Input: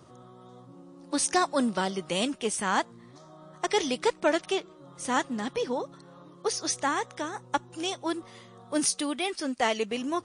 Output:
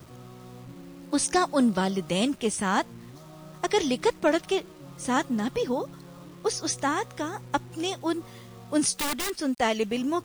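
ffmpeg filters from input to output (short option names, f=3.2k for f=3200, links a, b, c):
-filter_complex "[0:a]acrusher=bits=8:mix=0:aa=0.000001,lowshelf=f=220:g=11.5,asettb=1/sr,asplit=3[a][b][c];[a]atrim=end=8.964[d];[b]atrim=start=8.96:end=9.39,asetpts=PTS-STARTPTS,afade=t=in:d=0.004:c=qsin,afade=t=out:st=0.426:d=0.004:c=qsin,aeval=exprs='(mod(14.1*val(0)+1,2)-1)/14.1':c=same[e];[c]atrim=start=9.386[f];[d][e]acrossfade=d=0.004:c1=hsin:c2=qsin[g];[g][f]acrossfade=d=0.004:c1=qsin:c2=hsin"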